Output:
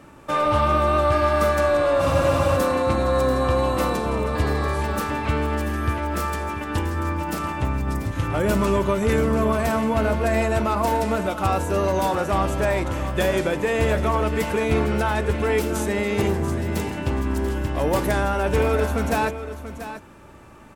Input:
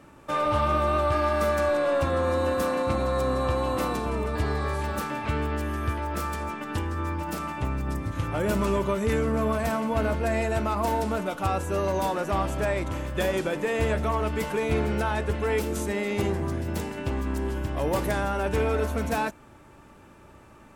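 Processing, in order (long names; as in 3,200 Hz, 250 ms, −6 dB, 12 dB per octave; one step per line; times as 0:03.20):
on a send: single-tap delay 687 ms −11.5 dB
on the sum: frozen spectrum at 0:02.01, 0.55 s
level +4.5 dB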